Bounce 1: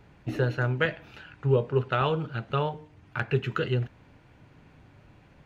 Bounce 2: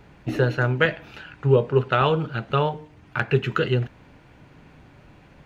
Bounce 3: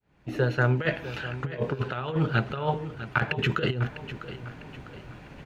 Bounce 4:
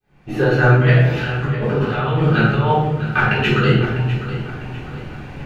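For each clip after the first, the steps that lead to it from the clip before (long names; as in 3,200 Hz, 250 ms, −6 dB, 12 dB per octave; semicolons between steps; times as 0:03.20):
parametric band 98 Hz −5.5 dB 0.52 octaves; level +6 dB
fade in at the beginning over 1.15 s; compressor whose output falls as the input rises −25 dBFS, ratio −0.5; repeating echo 651 ms, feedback 41%, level −13 dB
rectangular room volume 300 cubic metres, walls mixed, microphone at 3.7 metres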